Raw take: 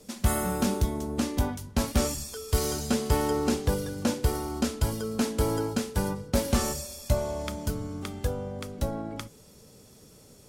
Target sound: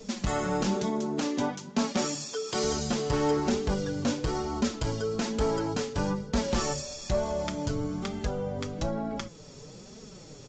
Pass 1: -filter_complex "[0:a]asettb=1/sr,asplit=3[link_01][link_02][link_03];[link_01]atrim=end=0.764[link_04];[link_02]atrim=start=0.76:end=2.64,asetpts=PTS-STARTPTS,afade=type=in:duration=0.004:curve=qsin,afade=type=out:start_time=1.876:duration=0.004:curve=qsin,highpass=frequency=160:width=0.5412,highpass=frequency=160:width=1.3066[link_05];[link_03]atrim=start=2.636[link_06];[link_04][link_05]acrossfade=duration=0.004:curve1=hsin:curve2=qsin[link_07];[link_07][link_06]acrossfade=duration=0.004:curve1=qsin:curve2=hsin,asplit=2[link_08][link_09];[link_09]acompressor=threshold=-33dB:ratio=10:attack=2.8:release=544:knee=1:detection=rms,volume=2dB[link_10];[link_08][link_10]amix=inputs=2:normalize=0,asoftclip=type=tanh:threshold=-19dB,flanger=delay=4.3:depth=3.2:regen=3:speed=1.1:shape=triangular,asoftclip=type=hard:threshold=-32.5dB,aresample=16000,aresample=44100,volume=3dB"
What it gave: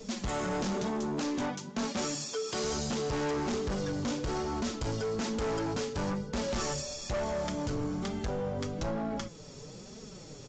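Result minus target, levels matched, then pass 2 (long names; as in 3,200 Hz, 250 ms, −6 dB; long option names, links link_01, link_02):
hard clipping: distortion +22 dB
-filter_complex "[0:a]asettb=1/sr,asplit=3[link_01][link_02][link_03];[link_01]atrim=end=0.764[link_04];[link_02]atrim=start=0.76:end=2.64,asetpts=PTS-STARTPTS,afade=type=in:duration=0.004:curve=qsin,afade=type=out:start_time=1.876:duration=0.004:curve=qsin,highpass=frequency=160:width=0.5412,highpass=frequency=160:width=1.3066[link_05];[link_03]atrim=start=2.636[link_06];[link_04][link_05]acrossfade=duration=0.004:curve1=hsin:curve2=qsin[link_07];[link_07][link_06]acrossfade=duration=0.004:curve1=qsin:curve2=hsin,asplit=2[link_08][link_09];[link_09]acompressor=threshold=-33dB:ratio=10:attack=2.8:release=544:knee=1:detection=rms,volume=2dB[link_10];[link_08][link_10]amix=inputs=2:normalize=0,asoftclip=type=tanh:threshold=-19dB,flanger=delay=4.3:depth=3.2:regen=3:speed=1.1:shape=triangular,asoftclip=type=hard:threshold=-22dB,aresample=16000,aresample=44100,volume=3dB"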